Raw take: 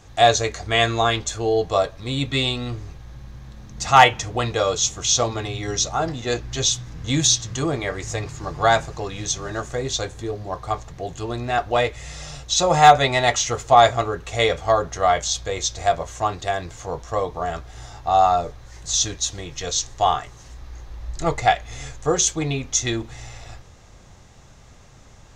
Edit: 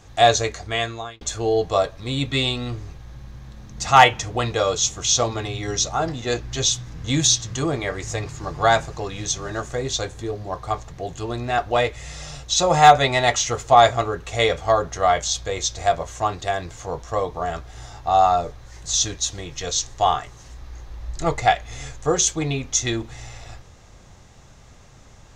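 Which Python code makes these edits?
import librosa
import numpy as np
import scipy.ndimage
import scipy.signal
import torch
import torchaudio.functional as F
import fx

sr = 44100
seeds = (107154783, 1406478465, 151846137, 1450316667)

y = fx.edit(x, sr, fx.fade_out_span(start_s=0.42, length_s=0.79), tone=tone)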